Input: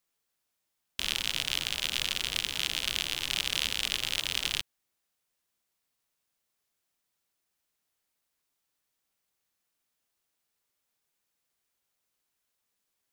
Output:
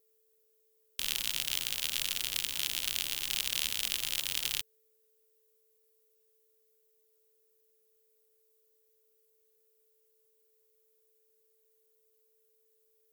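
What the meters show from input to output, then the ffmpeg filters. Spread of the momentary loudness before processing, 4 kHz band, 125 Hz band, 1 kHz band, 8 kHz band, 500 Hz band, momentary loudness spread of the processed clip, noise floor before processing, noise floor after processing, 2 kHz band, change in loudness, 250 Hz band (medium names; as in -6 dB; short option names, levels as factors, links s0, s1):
3 LU, -4.0 dB, -7.5 dB, -7.0 dB, +1.5 dB, -7.0 dB, 3 LU, -82 dBFS, -72 dBFS, -5.5 dB, -2.0 dB, -7.5 dB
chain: -af "aeval=exprs='val(0)+0.000447*sin(2*PI*440*n/s)':c=same,aemphasis=mode=production:type=50fm,volume=0.447"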